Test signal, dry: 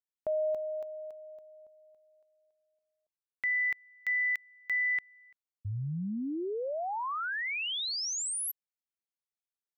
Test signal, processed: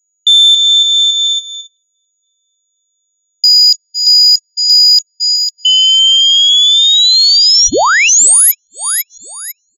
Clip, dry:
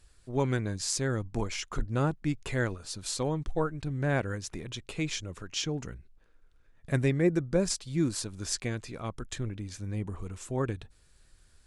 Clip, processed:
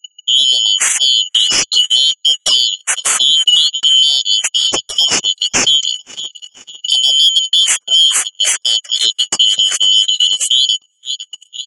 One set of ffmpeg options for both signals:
-filter_complex "[0:a]afftfilt=real='real(if(lt(b,272),68*(eq(floor(b/68),0)*2+eq(floor(b/68),1)*3+eq(floor(b/68),2)*0+eq(floor(b/68),3)*1)+mod(b,68),b),0)':imag='imag(if(lt(b,272),68*(eq(floor(b/68),0)*2+eq(floor(b/68),1)*3+eq(floor(b/68),2)*0+eq(floor(b/68),3)*1)+mod(b,68),b),0)':win_size=2048:overlap=0.75,asplit=2[s0][s1];[s1]asoftclip=type=tanh:threshold=0.0398,volume=0.299[s2];[s0][s2]amix=inputs=2:normalize=0,acrossover=split=230|1800[s3][s4][s5];[s3]acompressor=threshold=0.00126:ratio=1.5:attack=81:release=145:knee=2.83:detection=peak[s6];[s6][s4][s5]amix=inputs=3:normalize=0,highshelf=f=7000:g=10.5,afftfilt=real='re*gte(hypot(re,im),0.00631)':imag='im*gte(hypot(re,im),0.00631)':win_size=1024:overlap=0.75,asplit=2[s7][s8];[s8]aecho=0:1:501|1002|1503|2004|2505:0.112|0.0617|0.0339|0.0187|0.0103[s9];[s7][s9]amix=inputs=2:normalize=0,acompressor=threshold=0.00708:ratio=3:attack=0.19:release=583:knee=6:detection=peak,aeval=exprs='val(0)+0.00178*sin(2*PI*6800*n/s)':c=same,equalizer=f=68:w=0.53:g=-5.5,bandreject=f=47.22:t=h:w=4,bandreject=f=94.44:t=h:w=4,bandreject=f=141.66:t=h:w=4,agate=range=0.00891:threshold=0.00355:ratio=16:release=83:detection=peak,alimiter=level_in=53.1:limit=0.891:release=50:level=0:latency=1,volume=0.891"

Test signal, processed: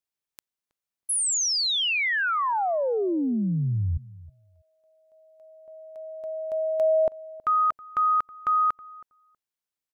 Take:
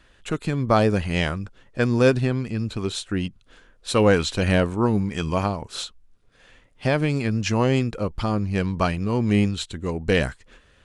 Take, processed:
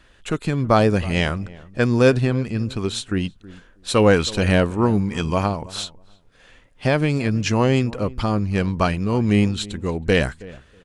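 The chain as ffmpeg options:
-filter_complex "[0:a]asplit=2[s0][s1];[s1]adelay=321,lowpass=f=1100:p=1,volume=0.112,asplit=2[s2][s3];[s3]adelay=321,lowpass=f=1100:p=1,volume=0.17[s4];[s0][s2][s4]amix=inputs=3:normalize=0,volume=1.33"

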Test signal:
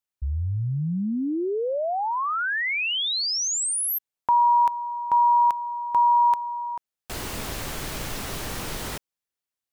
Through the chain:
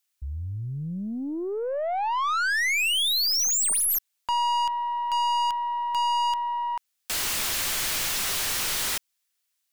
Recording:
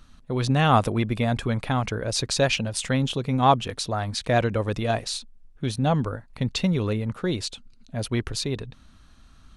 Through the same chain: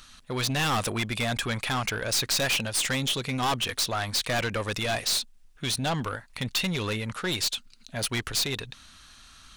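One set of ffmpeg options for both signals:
-af "tiltshelf=f=970:g=-9.5,aeval=exprs='(tanh(22.4*val(0)+0.15)-tanh(0.15))/22.4':c=same,volume=1.58"

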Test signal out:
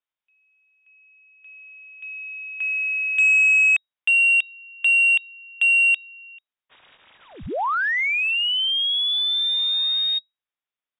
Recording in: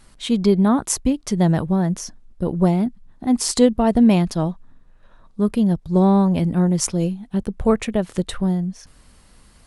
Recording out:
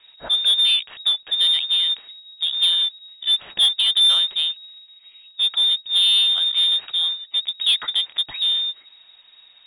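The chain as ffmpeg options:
-af "acrusher=bits=5:mode=log:mix=0:aa=0.000001,lowpass=f=3200:t=q:w=0.5098,lowpass=f=3200:t=q:w=0.6013,lowpass=f=3200:t=q:w=0.9,lowpass=f=3200:t=q:w=2.563,afreqshift=-3800,acontrast=87,volume=0.422"

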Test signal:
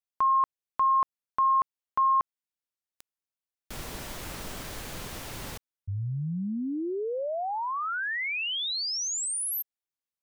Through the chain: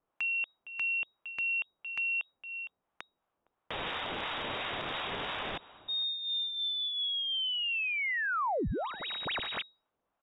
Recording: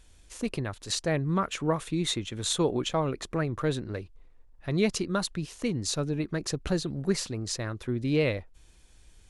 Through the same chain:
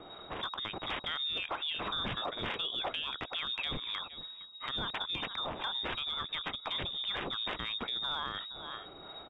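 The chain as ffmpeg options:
-filter_complex "[0:a]acrossover=split=490[s0][s1];[s0]flanger=delay=4.6:depth=7.3:regen=26:speed=0.22:shape=sinusoidal[s2];[s1]aexciter=amount=5.1:drive=6.1:freq=2700[s3];[s2][s3]amix=inputs=2:normalize=0,asplit=2[s4][s5];[s5]adelay=460.6,volume=0.0631,highshelf=f=4000:g=-10.4[s6];[s4][s6]amix=inputs=2:normalize=0,crystalizer=i=5:c=0,acontrast=57,lowpass=f=3200:t=q:w=0.5098,lowpass=f=3200:t=q:w=0.6013,lowpass=f=3200:t=q:w=0.9,lowpass=f=3200:t=q:w=2.563,afreqshift=-3800,acrossover=split=600[s7][s8];[s7]aeval=exprs='val(0)*(1-0.5/2+0.5/2*cos(2*PI*2.9*n/s))':c=same[s9];[s8]aeval=exprs='val(0)*(1-0.5/2-0.5/2*cos(2*PI*2.9*n/s))':c=same[s10];[s9][s10]amix=inputs=2:normalize=0,acompressor=threshold=0.0316:ratio=10:attack=0.38:release=114:knee=6:detection=peak"

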